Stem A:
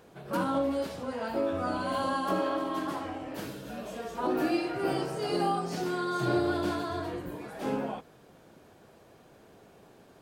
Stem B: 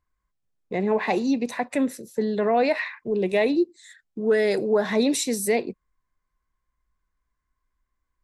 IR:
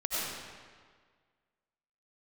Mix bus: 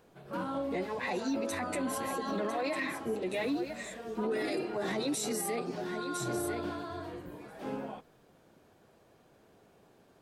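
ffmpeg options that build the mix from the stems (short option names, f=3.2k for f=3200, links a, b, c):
-filter_complex "[0:a]acrossover=split=4200[a][b];[b]acompressor=threshold=-55dB:ratio=4:attack=1:release=60[c];[a][c]amix=inputs=2:normalize=0,volume=-6.5dB[d];[1:a]highshelf=f=4.8k:g=9.5,acompressor=threshold=-26dB:ratio=2.5,asplit=2[e][f];[f]adelay=7.7,afreqshift=0.82[g];[e][g]amix=inputs=2:normalize=1,volume=-1dB,asplit=2[h][i];[i]volume=-10.5dB,aecho=0:1:1001:1[j];[d][h][j]amix=inputs=3:normalize=0,alimiter=level_in=1.5dB:limit=-24dB:level=0:latency=1:release=11,volume=-1.5dB"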